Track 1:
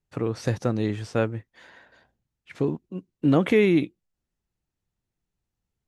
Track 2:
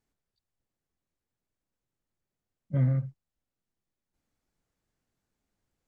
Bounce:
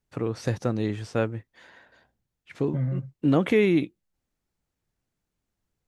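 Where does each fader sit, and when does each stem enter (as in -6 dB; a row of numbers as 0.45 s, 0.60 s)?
-1.5 dB, -2.5 dB; 0.00 s, 0.00 s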